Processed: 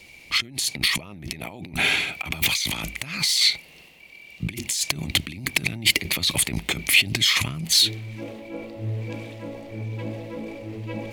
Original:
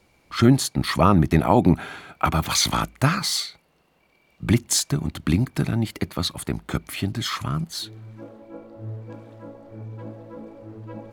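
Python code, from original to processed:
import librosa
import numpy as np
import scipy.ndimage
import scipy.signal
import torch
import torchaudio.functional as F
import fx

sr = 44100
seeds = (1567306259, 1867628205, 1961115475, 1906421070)

y = fx.transient(x, sr, attack_db=0, sustain_db=5)
y = fx.over_compress(y, sr, threshold_db=-30.0, ratio=-1.0)
y = fx.high_shelf_res(y, sr, hz=1800.0, db=8.0, q=3.0)
y = y * librosa.db_to_amplitude(-1.5)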